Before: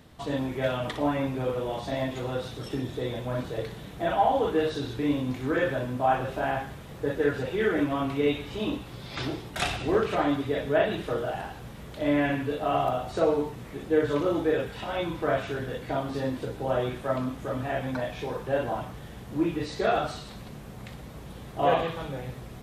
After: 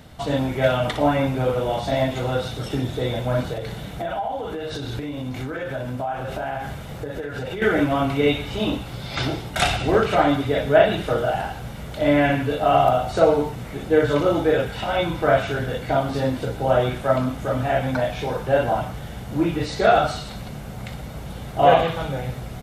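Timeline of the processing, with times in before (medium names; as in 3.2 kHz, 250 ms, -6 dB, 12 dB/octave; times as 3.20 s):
3.53–7.62 s: compression 10:1, threshold -32 dBFS
whole clip: comb 1.4 ms, depth 32%; trim +7.5 dB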